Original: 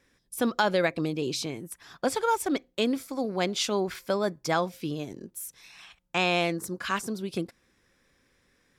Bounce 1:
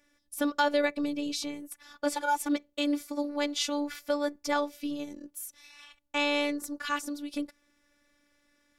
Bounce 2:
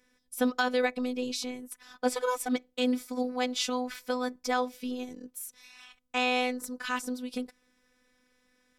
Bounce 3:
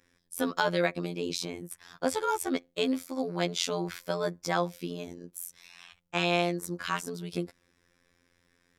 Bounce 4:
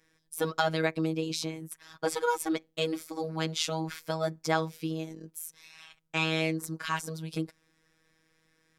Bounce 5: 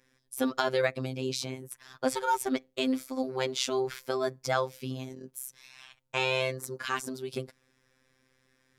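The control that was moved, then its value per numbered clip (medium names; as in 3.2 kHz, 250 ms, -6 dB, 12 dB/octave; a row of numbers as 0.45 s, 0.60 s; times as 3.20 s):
robot voice, frequency: 290 Hz, 250 Hz, 87 Hz, 160 Hz, 130 Hz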